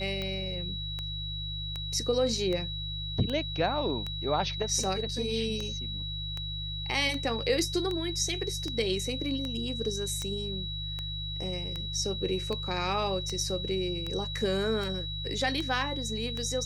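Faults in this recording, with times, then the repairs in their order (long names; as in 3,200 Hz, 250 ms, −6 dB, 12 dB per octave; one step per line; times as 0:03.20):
mains hum 50 Hz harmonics 3 −38 dBFS
scratch tick 78 rpm −21 dBFS
whistle 3,900 Hz −36 dBFS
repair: click removal
hum removal 50 Hz, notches 3
notch filter 3,900 Hz, Q 30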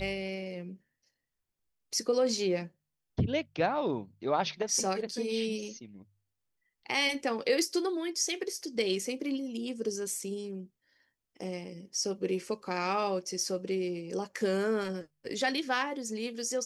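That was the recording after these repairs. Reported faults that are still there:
none of them is left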